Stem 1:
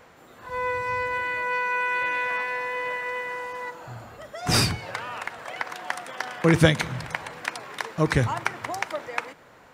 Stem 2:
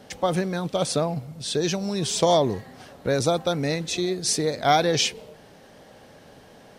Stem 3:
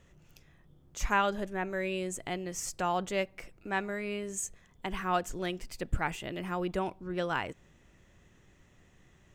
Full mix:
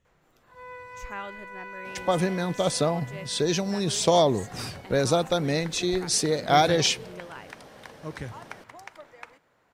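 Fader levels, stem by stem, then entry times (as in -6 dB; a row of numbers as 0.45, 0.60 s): -15.0, -0.5, -10.5 dB; 0.05, 1.85, 0.00 s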